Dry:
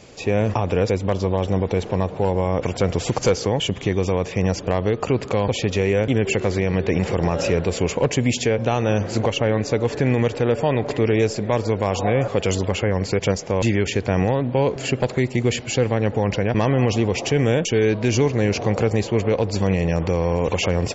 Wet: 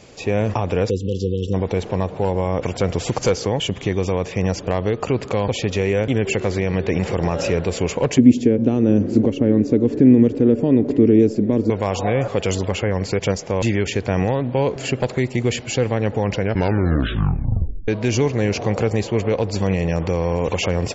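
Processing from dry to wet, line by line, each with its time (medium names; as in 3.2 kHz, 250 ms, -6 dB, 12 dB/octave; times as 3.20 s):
0.90–1.54 s: spectral selection erased 520–2600 Hz
8.18–11.70 s: FFT filter 140 Hz 0 dB, 270 Hz +14 dB, 790 Hz -12 dB
16.40 s: tape stop 1.48 s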